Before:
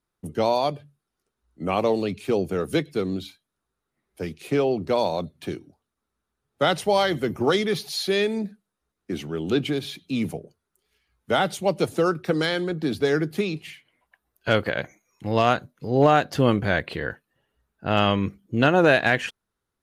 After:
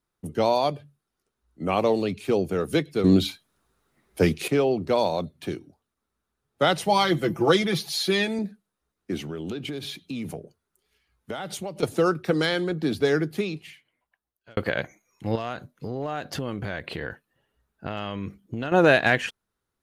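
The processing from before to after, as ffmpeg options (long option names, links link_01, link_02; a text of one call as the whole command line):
ffmpeg -i in.wav -filter_complex "[0:a]asettb=1/sr,asplit=3[link_01][link_02][link_03];[link_01]atrim=end=6.804[link_04];[link_02]atrim=start=6.8:end=8.39,asetpts=PTS-STARTPTS,afade=type=in:duration=0.004:curve=qsin,afade=type=out:start_time=1.586:duration=0.004:curve=qsin,aecho=1:1:6:0.68,atrim=end_sample=70119[link_05];[link_03]atrim=start=8.386[link_06];[link_04][link_05]acrossfade=duration=0.004:curve1=hsin:curve2=qsin[link_07];[link_07][link_06]acrossfade=duration=0.004:curve1=qsin:curve2=hsin,asettb=1/sr,asplit=3[link_08][link_09][link_10];[link_08]atrim=end=9.294[link_11];[link_09]atrim=start=9.29:end=11.83,asetpts=PTS-STARTPTS,afade=type=in:duration=0.004:curve=qsin,afade=type=out:start_time=2.536:duration=0.004:curve=qsin,acompressor=threshold=-28dB:ratio=12:attack=3.2:release=140:knee=1:detection=peak[link_12];[link_10]atrim=start=11.826[link_13];[link_11][link_12]acrossfade=duration=0.004:curve1=hsin:curve2=qsin[link_14];[link_14][link_13]acrossfade=duration=0.004:curve1=qsin:curve2=hsin,asettb=1/sr,asplit=3[link_15][link_16][link_17];[link_15]atrim=end=15.354[link_18];[link_16]atrim=start=15.35:end=18.72,asetpts=PTS-STARTPTS,afade=type=in:duration=0.004:curve=qsin,afade=type=out:start_time=3.366:duration=0.004:curve=qsin,acompressor=threshold=-26dB:ratio=8:attack=3.2:release=140:knee=1:detection=peak[link_19];[link_17]atrim=start=18.716[link_20];[link_18][link_19]acrossfade=duration=0.004:curve1=hsin:curve2=qsin[link_21];[link_21][link_20]acrossfade=duration=0.004:curve1=qsin:curve2=hsin,asplit=4[link_22][link_23][link_24][link_25];[link_22]atrim=end=3.042[link_26];[link_23]atrim=start=3.038:end=4.482,asetpts=PTS-STARTPTS,volume=11dB[link_27];[link_24]atrim=start=4.478:end=14.57,asetpts=PTS-STARTPTS,afade=type=out:start_time=8.592:duration=1.5[link_28];[link_25]atrim=start=14.57,asetpts=PTS-STARTPTS,afade=type=in:duration=0.004:curve=hsin[link_29];[link_26][link_27]acrossfade=duration=0.004:curve1=hsin:curve2=hsin[link_30];[link_28][link_29]concat=n=2:v=0:a=1[link_31];[link_30][link_31]acrossfade=duration=0.004:curve1=hsin:curve2=hsin" out.wav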